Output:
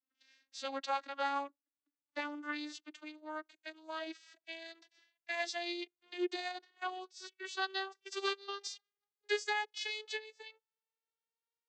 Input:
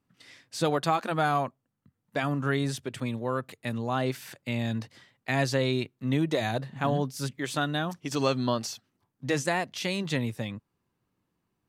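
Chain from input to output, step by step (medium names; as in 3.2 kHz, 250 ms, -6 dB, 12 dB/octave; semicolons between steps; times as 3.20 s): vocoder on a note that slides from C4, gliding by +10 st; band-pass filter 4.7 kHz, Q 0.85; upward expansion 1.5:1, over -59 dBFS; trim +8.5 dB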